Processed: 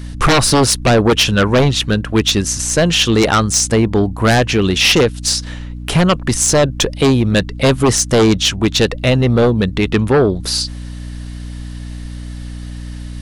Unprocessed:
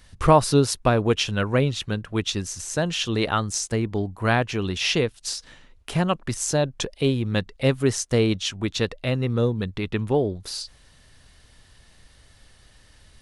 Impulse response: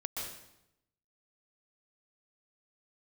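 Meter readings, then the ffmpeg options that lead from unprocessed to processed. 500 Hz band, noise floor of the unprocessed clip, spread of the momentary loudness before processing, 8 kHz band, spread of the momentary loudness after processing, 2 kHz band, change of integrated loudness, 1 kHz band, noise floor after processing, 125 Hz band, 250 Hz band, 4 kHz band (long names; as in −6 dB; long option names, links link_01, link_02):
+9.0 dB, −55 dBFS, 8 LU, +13.5 dB, 18 LU, +11.0 dB, +10.0 dB, +7.5 dB, −28 dBFS, +9.0 dB, +10.5 dB, +12.5 dB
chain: -filter_complex "[0:a]equalizer=frequency=80:width=1.5:gain=-5.5,aeval=exprs='val(0)+0.01*(sin(2*PI*60*n/s)+sin(2*PI*2*60*n/s)/2+sin(2*PI*3*60*n/s)/3+sin(2*PI*4*60*n/s)/4+sin(2*PI*5*60*n/s)/5)':channel_layout=same,asplit=2[link_01][link_02];[link_02]aeval=exprs='0.75*sin(PI/2*5.62*val(0)/0.75)':channel_layout=same,volume=-3dB[link_03];[link_01][link_03]amix=inputs=2:normalize=0,volume=-3dB"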